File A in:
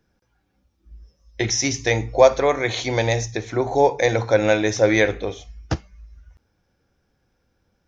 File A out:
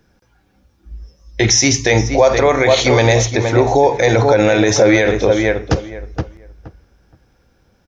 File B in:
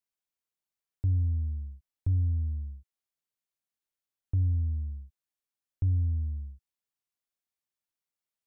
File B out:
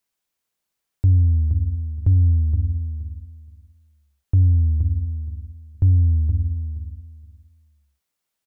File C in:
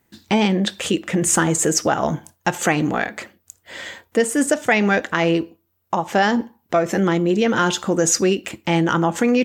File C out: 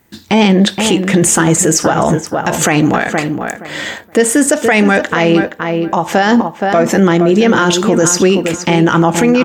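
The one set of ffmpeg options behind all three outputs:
-filter_complex "[0:a]asplit=2[a][b];[b]adelay=471,lowpass=f=1.9k:p=1,volume=-8.5dB,asplit=2[c][d];[d]adelay=471,lowpass=f=1.9k:p=1,volume=0.19,asplit=2[e][f];[f]adelay=471,lowpass=f=1.9k:p=1,volume=0.19[g];[c][e][g]amix=inputs=3:normalize=0[h];[a][h]amix=inputs=2:normalize=0,alimiter=level_in=12dB:limit=-1dB:release=50:level=0:latency=1,volume=-1dB"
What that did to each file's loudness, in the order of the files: +7.0, +10.5, +7.5 LU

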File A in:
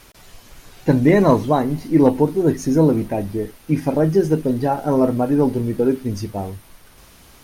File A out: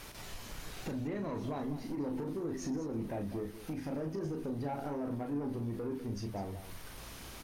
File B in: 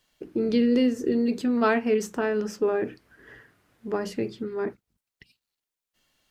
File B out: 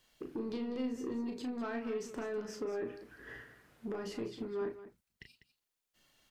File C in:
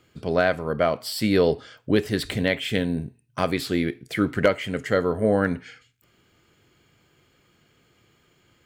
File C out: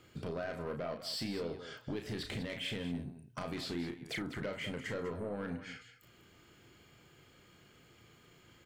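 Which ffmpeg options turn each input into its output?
-filter_complex "[0:a]acrossover=split=6900[a][b];[b]acompressor=threshold=-52dB:ratio=4:attack=1:release=60[c];[a][c]amix=inputs=2:normalize=0,alimiter=limit=-14.5dB:level=0:latency=1:release=42,acompressor=threshold=-35dB:ratio=4,asoftclip=type=tanh:threshold=-31.5dB,aecho=1:1:34.99|198.3:0.501|0.251,volume=-1dB"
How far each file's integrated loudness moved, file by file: -21.0, -14.0, -16.0 LU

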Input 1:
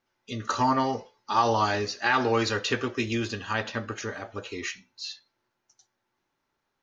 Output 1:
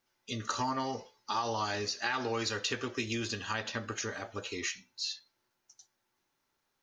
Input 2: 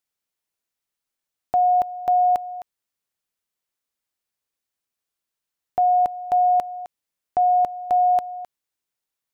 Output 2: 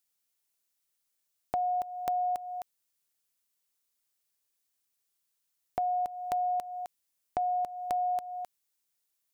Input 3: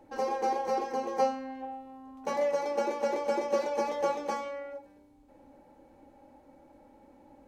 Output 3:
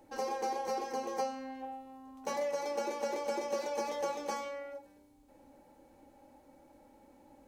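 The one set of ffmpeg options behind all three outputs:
-af "highshelf=f=4k:g=10.5,acompressor=threshold=-28dB:ratio=3,volume=-3.5dB"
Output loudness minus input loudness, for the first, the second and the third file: -7.0, -12.5, -5.5 LU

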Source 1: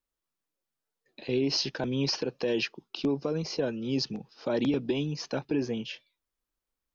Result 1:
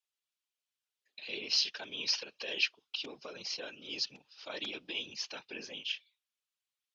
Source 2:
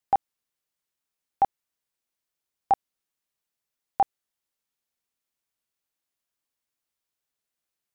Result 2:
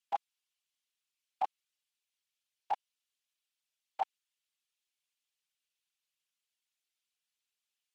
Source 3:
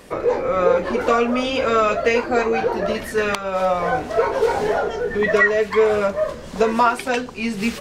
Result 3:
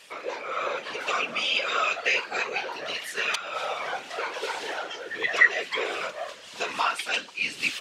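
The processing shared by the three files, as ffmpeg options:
-af "afftfilt=real='hypot(re,im)*cos(2*PI*random(0))':imag='hypot(re,im)*sin(2*PI*random(1))':win_size=512:overlap=0.75,bandpass=f=2.2k:t=q:w=1.1:csg=0,aexciter=amount=3.3:drive=4.8:freq=2.7k,volume=3dB"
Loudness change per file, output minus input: -5.5, -11.5, -7.5 LU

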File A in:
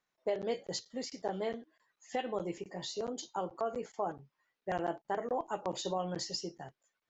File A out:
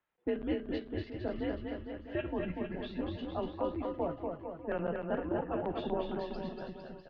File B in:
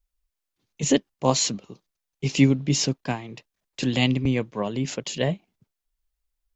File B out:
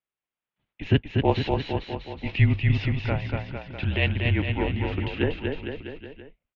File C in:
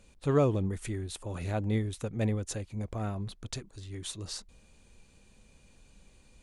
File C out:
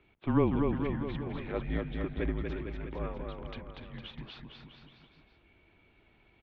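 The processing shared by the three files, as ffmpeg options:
-af "aecho=1:1:240|456|650.4|825.4|982.8:0.631|0.398|0.251|0.158|0.1,highpass=f=190:t=q:w=0.5412,highpass=f=190:t=q:w=1.307,lowpass=f=3.3k:t=q:w=0.5176,lowpass=f=3.3k:t=q:w=0.7071,lowpass=f=3.3k:t=q:w=1.932,afreqshift=-160"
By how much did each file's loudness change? +0.5, -1.5, -1.0 LU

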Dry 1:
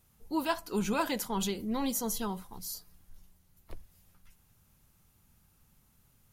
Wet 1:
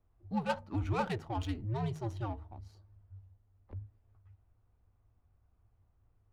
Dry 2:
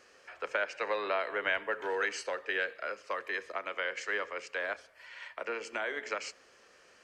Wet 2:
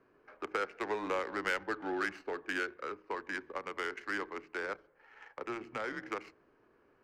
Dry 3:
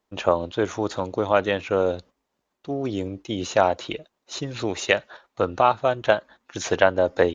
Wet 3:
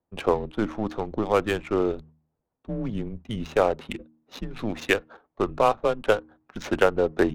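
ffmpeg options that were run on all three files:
-af "afreqshift=-110,adynamicsmooth=sensitivity=4:basefreq=1.1k,bandreject=f=78.13:t=h:w=4,bandreject=f=156.26:t=h:w=4,bandreject=f=234.39:t=h:w=4,bandreject=f=312.52:t=h:w=4,volume=-2dB"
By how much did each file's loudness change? -3.5, -3.0, -2.0 LU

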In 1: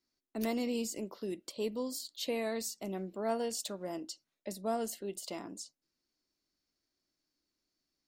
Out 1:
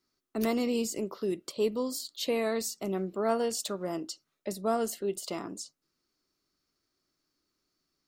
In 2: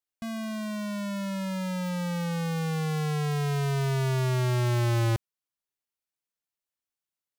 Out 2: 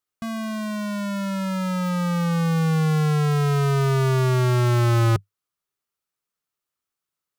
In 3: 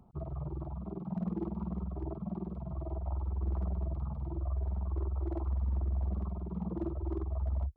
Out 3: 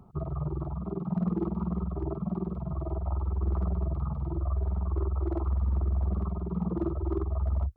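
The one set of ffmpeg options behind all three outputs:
-af "equalizer=f=100:t=o:w=0.33:g=5,equalizer=f=160:t=o:w=0.33:g=5,equalizer=f=400:t=o:w=0.33:g=5,equalizer=f=1.25k:t=o:w=0.33:g=9,volume=4dB"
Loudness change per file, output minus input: +5.5, +7.0, +5.5 LU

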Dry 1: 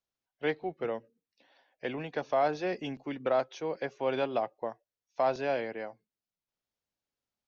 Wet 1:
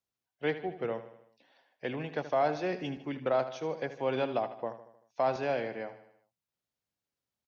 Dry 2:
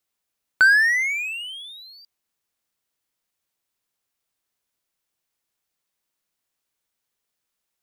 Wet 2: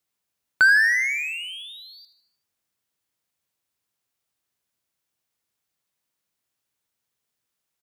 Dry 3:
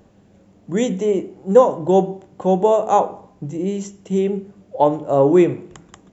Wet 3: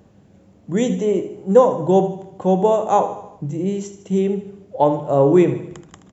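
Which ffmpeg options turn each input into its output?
-af "highpass=42,equalizer=f=120:w=0.96:g=4.5,aecho=1:1:77|154|231|308|385:0.237|0.126|0.0666|0.0353|0.0187,volume=-1dB"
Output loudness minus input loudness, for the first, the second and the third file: -0.5, -1.0, -0.5 LU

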